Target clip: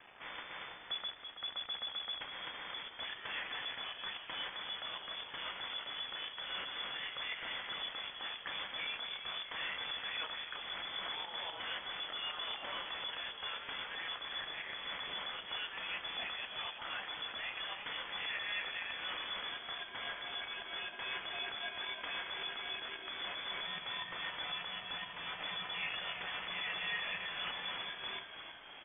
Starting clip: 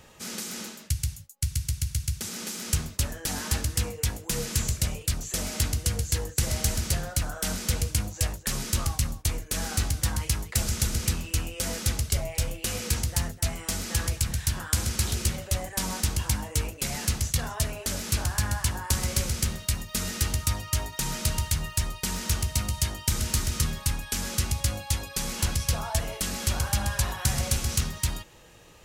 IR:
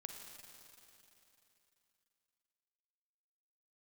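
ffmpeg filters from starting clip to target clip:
-filter_complex "[0:a]agate=range=-7dB:threshold=-32dB:ratio=16:detection=peak,acrusher=bits=7:dc=4:mix=0:aa=0.000001,tiltshelf=f=830:g=-8.5,acompressor=threshold=-30dB:ratio=6,alimiter=limit=-17dB:level=0:latency=1:release=299,acrossover=split=2700[a][b];[b]acompressor=threshold=-43dB:ratio=4:attack=1:release=60[c];[a][c]amix=inputs=2:normalize=0,asoftclip=type=tanh:threshold=-35dB,asplit=9[d][e][f][g][h][i][j][k][l];[e]adelay=327,afreqshift=60,volume=-9dB[m];[f]adelay=654,afreqshift=120,volume=-13.3dB[n];[g]adelay=981,afreqshift=180,volume=-17.6dB[o];[h]adelay=1308,afreqshift=240,volume=-21.9dB[p];[i]adelay=1635,afreqshift=300,volume=-26.2dB[q];[j]adelay=1962,afreqshift=360,volume=-30.5dB[r];[k]adelay=2289,afreqshift=420,volume=-34.8dB[s];[l]adelay=2616,afreqshift=480,volume=-39.1dB[t];[d][m][n][o][p][q][r][s][t]amix=inputs=9:normalize=0,lowpass=f=3k:t=q:w=0.5098,lowpass=f=3k:t=q:w=0.6013,lowpass=f=3k:t=q:w=0.9,lowpass=f=3k:t=q:w=2.563,afreqshift=-3500,volume=4.5dB"

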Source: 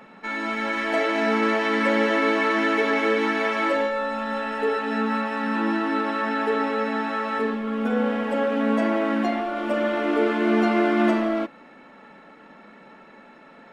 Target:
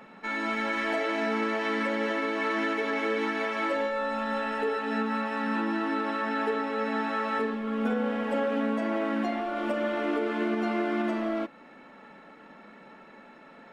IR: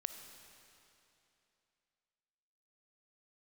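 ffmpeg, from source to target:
-af "alimiter=limit=-16.5dB:level=0:latency=1:release=435,volume=-2.5dB"

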